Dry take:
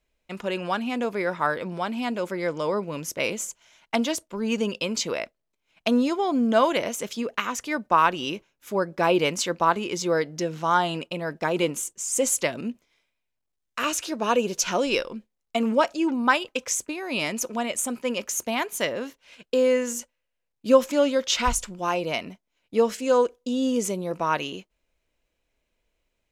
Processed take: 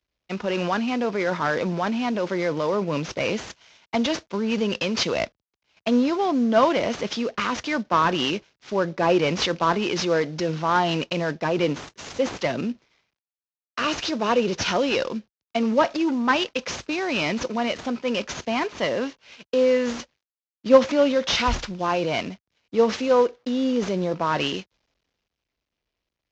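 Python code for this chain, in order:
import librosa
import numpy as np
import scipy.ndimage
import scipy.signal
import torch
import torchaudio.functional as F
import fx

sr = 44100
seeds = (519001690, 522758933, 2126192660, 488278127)

p1 = fx.cvsd(x, sr, bps=32000)
p2 = scipy.signal.sosfilt(scipy.signal.butter(2, 48.0, 'highpass', fs=sr, output='sos'), p1)
p3 = fx.over_compress(p2, sr, threshold_db=-32.0, ratio=-1.0)
p4 = p2 + (p3 * 10.0 ** (-1.5 / 20.0))
y = fx.band_widen(p4, sr, depth_pct=40)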